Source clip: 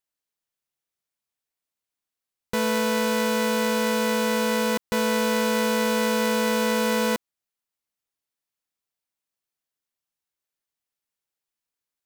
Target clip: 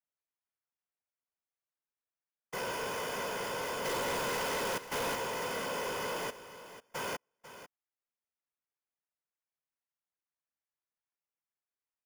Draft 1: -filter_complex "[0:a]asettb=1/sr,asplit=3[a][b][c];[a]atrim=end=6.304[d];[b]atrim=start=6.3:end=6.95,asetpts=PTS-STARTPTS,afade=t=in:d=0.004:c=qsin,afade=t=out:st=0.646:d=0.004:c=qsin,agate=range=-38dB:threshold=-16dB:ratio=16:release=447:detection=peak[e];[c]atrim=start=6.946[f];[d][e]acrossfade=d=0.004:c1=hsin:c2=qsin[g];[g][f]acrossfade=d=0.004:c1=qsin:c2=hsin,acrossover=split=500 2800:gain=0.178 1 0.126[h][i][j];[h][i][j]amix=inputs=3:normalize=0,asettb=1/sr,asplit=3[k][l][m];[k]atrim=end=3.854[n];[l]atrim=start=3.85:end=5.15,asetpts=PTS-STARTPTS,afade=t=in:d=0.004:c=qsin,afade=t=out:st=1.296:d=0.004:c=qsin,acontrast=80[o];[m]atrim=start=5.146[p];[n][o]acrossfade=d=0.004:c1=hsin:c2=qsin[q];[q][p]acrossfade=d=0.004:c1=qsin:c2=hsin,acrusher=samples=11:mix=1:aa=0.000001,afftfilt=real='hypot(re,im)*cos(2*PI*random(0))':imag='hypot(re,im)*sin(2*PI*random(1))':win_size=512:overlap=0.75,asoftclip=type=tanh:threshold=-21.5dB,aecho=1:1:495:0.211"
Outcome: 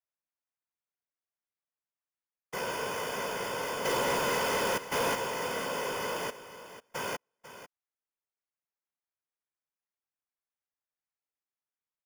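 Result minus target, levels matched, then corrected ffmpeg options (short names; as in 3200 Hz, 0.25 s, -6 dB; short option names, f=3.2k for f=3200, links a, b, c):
soft clip: distortion -9 dB
-filter_complex "[0:a]asettb=1/sr,asplit=3[a][b][c];[a]atrim=end=6.304[d];[b]atrim=start=6.3:end=6.95,asetpts=PTS-STARTPTS,afade=t=in:d=0.004:c=qsin,afade=t=out:st=0.646:d=0.004:c=qsin,agate=range=-38dB:threshold=-16dB:ratio=16:release=447:detection=peak[e];[c]atrim=start=6.946[f];[d][e]acrossfade=d=0.004:c1=hsin:c2=qsin[g];[g][f]acrossfade=d=0.004:c1=qsin:c2=hsin,acrossover=split=500 2800:gain=0.178 1 0.126[h][i][j];[h][i][j]amix=inputs=3:normalize=0,asettb=1/sr,asplit=3[k][l][m];[k]atrim=end=3.854[n];[l]atrim=start=3.85:end=5.15,asetpts=PTS-STARTPTS,afade=t=in:d=0.004:c=qsin,afade=t=out:st=1.296:d=0.004:c=qsin,acontrast=80[o];[m]atrim=start=5.146[p];[n][o]acrossfade=d=0.004:c1=hsin:c2=qsin[q];[q][p]acrossfade=d=0.004:c1=qsin:c2=hsin,acrusher=samples=11:mix=1:aa=0.000001,afftfilt=real='hypot(re,im)*cos(2*PI*random(0))':imag='hypot(re,im)*sin(2*PI*random(1))':win_size=512:overlap=0.75,asoftclip=type=tanh:threshold=-31dB,aecho=1:1:495:0.211"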